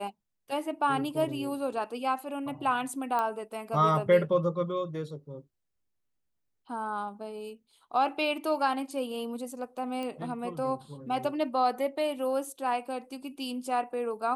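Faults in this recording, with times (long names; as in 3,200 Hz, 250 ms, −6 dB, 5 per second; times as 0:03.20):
0:03.19: click −18 dBFS
0:10.03: click −24 dBFS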